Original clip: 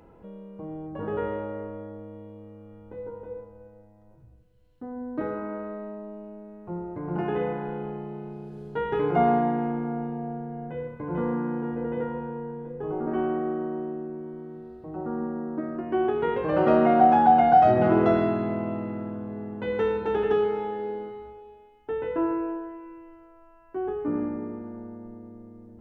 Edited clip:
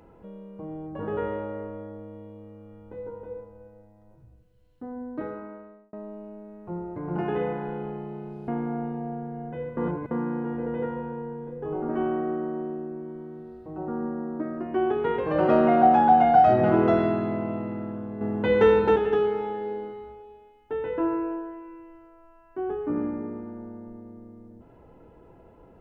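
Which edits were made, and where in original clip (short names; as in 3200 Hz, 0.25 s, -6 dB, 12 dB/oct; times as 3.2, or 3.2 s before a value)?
4.9–5.93 fade out
8.48–9.66 cut
10.95–11.29 reverse
19.39–20.14 gain +7.5 dB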